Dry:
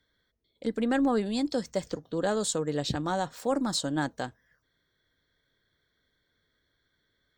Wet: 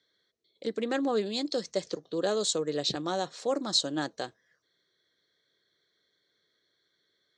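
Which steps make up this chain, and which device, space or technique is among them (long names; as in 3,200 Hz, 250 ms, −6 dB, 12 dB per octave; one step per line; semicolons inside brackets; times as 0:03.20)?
full-range speaker at full volume (highs frequency-modulated by the lows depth 0.12 ms; loudspeaker in its box 220–8,100 Hz, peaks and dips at 250 Hz −7 dB, 380 Hz +4 dB, 890 Hz −6 dB, 1,500 Hz −4 dB, 4,100 Hz +7 dB, 6,100 Hz +4 dB)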